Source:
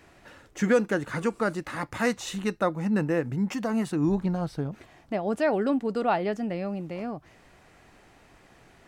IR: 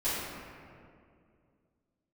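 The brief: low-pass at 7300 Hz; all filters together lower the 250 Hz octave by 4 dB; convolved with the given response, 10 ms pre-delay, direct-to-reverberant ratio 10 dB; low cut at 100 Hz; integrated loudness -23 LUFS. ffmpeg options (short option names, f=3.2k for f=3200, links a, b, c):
-filter_complex "[0:a]highpass=100,lowpass=7.3k,equalizer=f=250:t=o:g=-5,asplit=2[a][b];[1:a]atrim=start_sample=2205,adelay=10[c];[b][c]afir=irnorm=-1:irlink=0,volume=-19dB[d];[a][d]amix=inputs=2:normalize=0,volume=6.5dB"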